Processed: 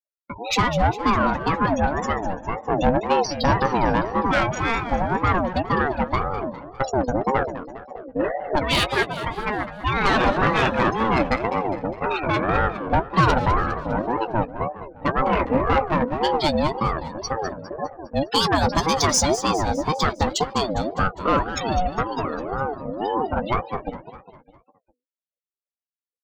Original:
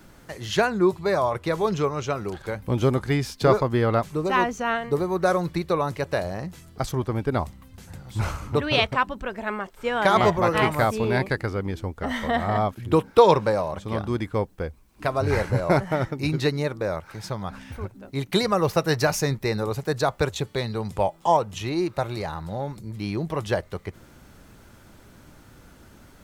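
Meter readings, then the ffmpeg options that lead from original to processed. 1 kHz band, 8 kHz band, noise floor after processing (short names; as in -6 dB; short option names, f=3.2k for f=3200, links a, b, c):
+4.5 dB, +7.5 dB, under -85 dBFS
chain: -filter_complex "[0:a]afftfilt=real='re*gte(hypot(re,im),0.0501)':imag='im*gte(hypot(re,im),0.0501)':win_size=1024:overlap=0.75,highpass=45,bass=f=250:g=2,treble=f=4k:g=15,bandreject=f=60:t=h:w=6,bandreject=f=120:t=h:w=6,agate=range=-33dB:threshold=-45dB:ratio=16:detection=peak,highshelf=f=10k:g=-7.5,asplit=2[a][b];[b]alimiter=limit=-10.5dB:level=0:latency=1:release=79,volume=1.5dB[c];[a][c]amix=inputs=2:normalize=0,asoftclip=type=tanh:threshold=-10.5dB,asplit=2[d][e];[e]adelay=15,volume=-12dB[f];[d][f]amix=inputs=2:normalize=0,aecho=1:1:203|406|609|812|1015:0.251|0.131|0.0679|0.0353|0.0184,aeval=exprs='val(0)*sin(2*PI*520*n/s+520*0.3/1.9*sin(2*PI*1.9*n/s))':c=same"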